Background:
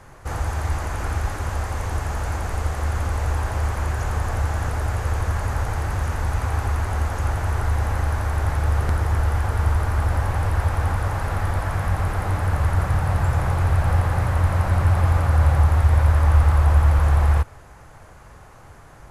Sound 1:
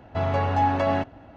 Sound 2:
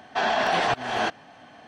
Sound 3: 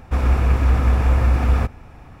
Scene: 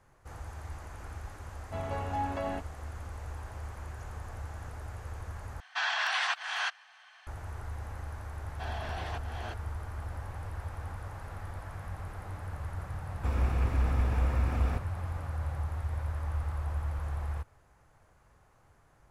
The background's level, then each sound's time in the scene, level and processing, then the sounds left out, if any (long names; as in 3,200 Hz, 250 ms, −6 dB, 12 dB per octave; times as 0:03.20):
background −18 dB
0:01.57: mix in 1 −11.5 dB
0:05.60: overwrite with 2 −2.5 dB + high-pass filter 1,100 Hz 24 dB per octave
0:08.44: mix in 2 −17.5 dB
0:13.12: mix in 3 −12 dB